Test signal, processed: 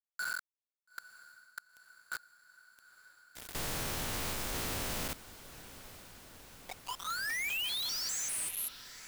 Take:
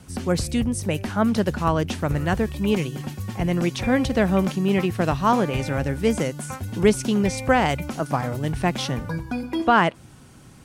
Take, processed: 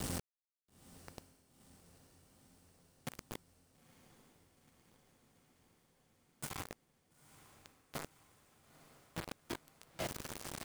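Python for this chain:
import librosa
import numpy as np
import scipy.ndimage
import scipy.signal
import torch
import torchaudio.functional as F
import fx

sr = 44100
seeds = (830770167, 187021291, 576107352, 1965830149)

p1 = fx.spec_steps(x, sr, hold_ms=200)
p2 = fx.gate_flip(p1, sr, shuts_db=-22.0, range_db=-35)
p3 = fx.over_compress(p2, sr, threshold_db=-41.0, ratio=-1.0)
p4 = fx.hum_notches(p3, sr, base_hz=50, count=7)
p5 = fx.quant_companded(p4, sr, bits=2)
p6 = p5 + fx.echo_diffused(p5, sr, ms=924, feedback_pct=72, wet_db=-16.0, dry=0)
y = F.gain(torch.from_numpy(p6), -8.0).numpy()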